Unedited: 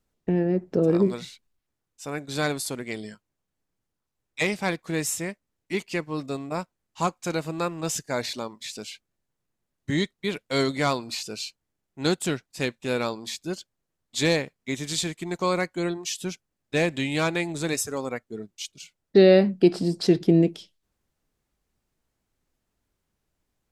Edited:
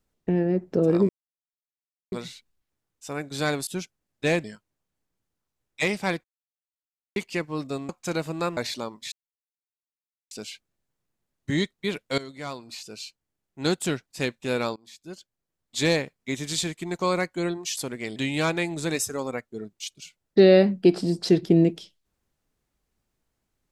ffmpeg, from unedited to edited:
-filter_complex "[0:a]asplit=13[a][b][c][d][e][f][g][h][i][j][k][l][m];[a]atrim=end=1.09,asetpts=PTS-STARTPTS,afade=t=out:st=1.086:d=0.004:c=hsin,apad=pad_dur=1.03[n];[b]atrim=start=1.09:end=2.642,asetpts=PTS-STARTPTS,afade=t=in:d=0.004:c=hsin[o];[c]atrim=start=16.168:end=16.942[p];[d]atrim=start=3.028:end=4.83,asetpts=PTS-STARTPTS,afade=t=out:st=1.798:d=0.004:c=hsin[q];[e]atrim=start=4.83:end=5.75,asetpts=PTS-STARTPTS,volume=0[r];[f]atrim=start=5.75:end=6.482,asetpts=PTS-STARTPTS,afade=t=in:d=0.004:c=hsin[s];[g]atrim=start=7.078:end=7.762[t];[h]atrim=start=8.158:end=8.71,asetpts=PTS-STARTPTS,afade=t=out:st=0.548:d=0.004:c=hsin,apad=pad_dur=1.19[u];[i]atrim=start=8.71:end=10.58,asetpts=PTS-STARTPTS,afade=t=in:d=0.004:c=hsin,afade=t=out:st=1.866:d=0.004:c=hsin:silence=0.125893[v];[j]atrim=start=10.58:end=13.16,asetpts=PTS-STARTPTS,afade=t=in:d=1.66:silence=0.125893,afade=t=out:st=2.576:d=0.004:c=hsin:silence=0.0668344[w];[k]atrim=start=13.16:end=16.172,asetpts=PTS-STARTPTS,afade=t=in:d=1.13:silence=0.0668344[x];[l]atrim=start=2.638:end=3.032[y];[m]atrim=start=16.938[z];[n][o]concat=n=2:v=0:a=1[aa];[aa][p]acrossfade=d=0.004:c1=hsin:c2=hsin[ab];[q][r][s]concat=n=3:v=0:a=1[ac];[ab][ac]acrossfade=d=0.004:c1=hsin:c2=hsin[ad];[ad][t]acrossfade=d=0.004:c1=hsin:c2=hsin[ae];[u][v][w][x]concat=n=4:v=0:a=1[af];[ae][af]acrossfade=d=0.004:c1=hsin:c2=hsin[ag];[ag][y]acrossfade=d=0.004:c1=hsin:c2=hsin[ah];[ah][z]acrossfade=d=0.004:c1=hsin:c2=hsin"

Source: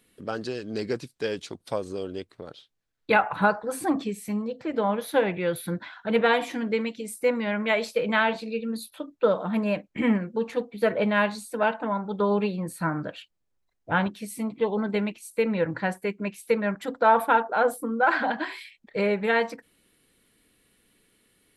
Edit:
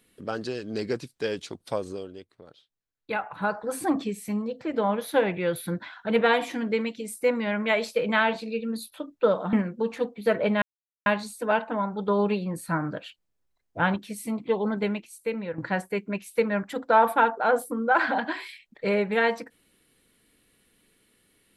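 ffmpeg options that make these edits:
-filter_complex "[0:a]asplit=6[a][b][c][d][e][f];[a]atrim=end=2.22,asetpts=PTS-STARTPTS,afade=t=out:st=1.89:d=0.33:c=qua:silence=0.354813[g];[b]atrim=start=2.22:end=3.3,asetpts=PTS-STARTPTS,volume=-9dB[h];[c]atrim=start=3.3:end=9.532,asetpts=PTS-STARTPTS,afade=t=in:d=0.33:c=qua:silence=0.354813[i];[d]atrim=start=10.088:end=11.18,asetpts=PTS-STARTPTS,afade=t=out:st=1.088:d=0.004:c=hsin,apad=pad_dur=0.44[j];[e]atrim=start=11.18:end=15.7,asetpts=PTS-STARTPTS,afade=t=in:d=0.004:c=hsin,afade=t=out:st=3.69:d=0.83:silence=0.316228[k];[f]atrim=start=15.7,asetpts=PTS-STARTPTS,afade=t=in:d=0.004:c=hsin:silence=0.316228[l];[g][h][i]concat=n=3:v=0:a=1[m];[j][k][l]concat=n=3:v=0:a=1[n];[m][n]acrossfade=d=0.004:c1=hsin:c2=hsin"

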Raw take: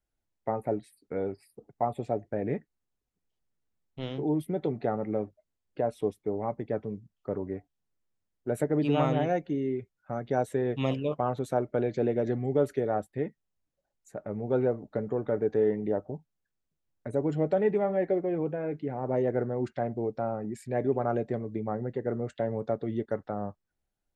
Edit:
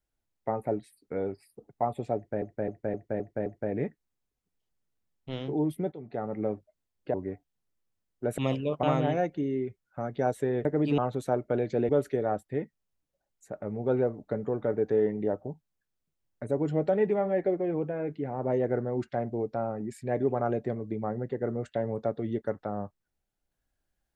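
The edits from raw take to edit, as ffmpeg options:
-filter_complex "[0:a]asplit=13[a][b][c][d][e][f][g][h][i][j][k][l][m];[a]atrim=end=2.422[n];[b]atrim=start=2.158:end=2.422[o];[c]atrim=start=2.158:end=2.422[p];[d]atrim=start=2.158:end=2.422[q];[e]atrim=start=2.158:end=2.422[r];[f]atrim=start=2.158:end=4.62,asetpts=PTS-STARTPTS,afade=t=out:st=2.458:d=0.004:c=hsin:silence=0.125893[s];[g]atrim=start=4.62:end=5.842,asetpts=PTS-STARTPTS,afade=t=in:d=0.51:silence=0.125893[t];[h]atrim=start=7.378:end=8.622[u];[i]atrim=start=10.768:end=11.222[v];[j]atrim=start=8.948:end=10.772[w];[k]atrim=start=8.618:end=8.952[x];[l]atrim=start=11.218:end=12.132[y];[m]atrim=start=12.528[z];[n][o]acrossfade=d=0.004:c1=hsin:c2=hsin[aa];[aa][p]acrossfade=d=0.004:c1=hsin:c2=hsin[ab];[ab][q]acrossfade=d=0.004:c1=hsin:c2=hsin[ac];[ac][r]acrossfade=d=0.004:c1=hsin:c2=hsin[ad];[s][t]concat=n=2:v=0:a=1[ae];[ad][ae]acrossfade=d=0.004:c1=hsin:c2=hsin[af];[af][u]acrossfade=d=0.004:c1=hsin:c2=hsin[ag];[ag][v]acrossfade=d=0.004:c1=hsin:c2=hsin[ah];[ah][w]acrossfade=d=0.004:c1=hsin:c2=hsin[ai];[ai][x]acrossfade=d=0.004:c1=hsin:c2=hsin[aj];[aj][y]acrossfade=d=0.004:c1=hsin:c2=hsin[ak];[ak][z]acrossfade=d=0.004:c1=hsin:c2=hsin"

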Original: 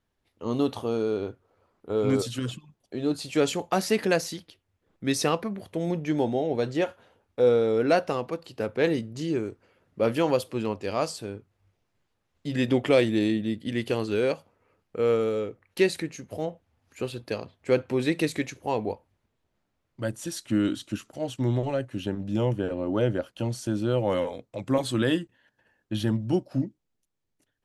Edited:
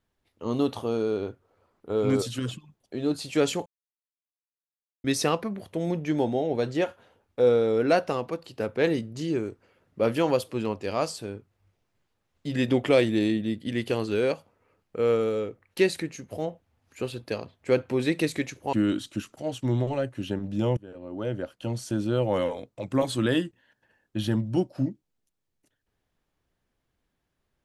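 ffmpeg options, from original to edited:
-filter_complex "[0:a]asplit=5[a][b][c][d][e];[a]atrim=end=3.66,asetpts=PTS-STARTPTS,afade=t=out:st=3.656:d=0.004:c=hsin[f];[b]atrim=start=3.66:end=5.04,asetpts=PTS-STARTPTS,volume=0[g];[c]atrim=start=5.04:end=18.732,asetpts=PTS-STARTPTS,afade=t=in:d=0.004:c=hsin[h];[d]atrim=start=20.488:end=22.53,asetpts=PTS-STARTPTS,afade=t=out:st=2.038:d=0.004:c=hsin:silence=0.0841395[i];[e]atrim=start=22.53,asetpts=PTS-STARTPTS,afade=t=in:d=1.13:silence=0.0841395[j];[f][g][h]concat=n=3:v=0:a=1[k];[i][j]concat=n=2:v=0:a=1[l];[k][l]acrossfade=d=0.004:c1=hsin:c2=hsin"

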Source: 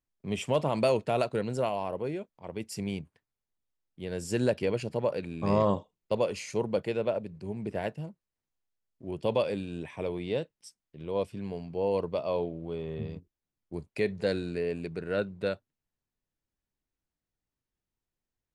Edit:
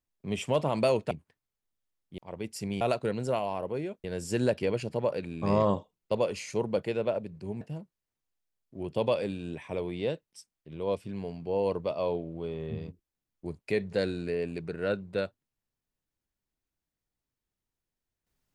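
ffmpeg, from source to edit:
-filter_complex "[0:a]asplit=6[a][b][c][d][e][f];[a]atrim=end=1.112[g];[b]atrim=start=2.968:end=4.042[h];[c]atrim=start=2.338:end=2.972[i];[d]atrim=start=1.108:end=2.342[j];[e]atrim=start=4.038:end=7.612[k];[f]atrim=start=7.888[l];[g][h]acrossfade=d=0.004:c1=hsin:c2=hsin[m];[m][i]acrossfade=d=0.004:c1=hsin:c2=hsin[n];[n][j]acrossfade=d=0.004:c1=hsin:c2=hsin[o];[o][k]acrossfade=d=0.004:c1=hsin:c2=hsin[p];[p][l]acrossfade=d=0.004:c1=hsin:c2=hsin"

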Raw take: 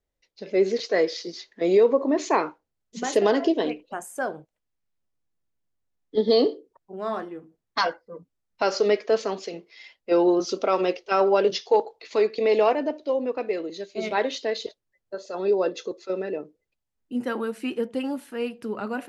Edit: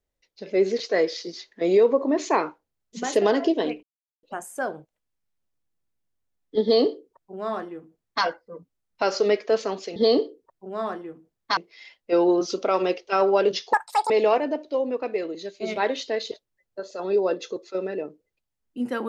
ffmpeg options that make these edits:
-filter_complex "[0:a]asplit=6[a][b][c][d][e][f];[a]atrim=end=3.83,asetpts=PTS-STARTPTS,afade=t=out:st=3.826:d=0.004:c=hsin,apad=pad_dur=0.4[g];[b]atrim=start=3.83:end=9.562,asetpts=PTS-STARTPTS,afade=t=in:d=0.004:c=hsin[h];[c]atrim=start=6.228:end=7.842[i];[d]atrim=start=9.558:end=11.724[j];[e]atrim=start=11.72:end=12.45,asetpts=PTS-STARTPTS,asetrate=86877,aresample=44100[k];[f]atrim=start=12.446[l];[g][h]concat=n=2:v=0:a=1[m];[m][i]acrossfade=d=0.004:c1=hsin:c2=hsin[n];[n][j]acrossfade=d=0.004:c1=hsin:c2=hsin[o];[o][k]acrossfade=d=0.004:c1=hsin:c2=hsin[p];[p][l]acrossfade=d=0.004:c1=hsin:c2=hsin"

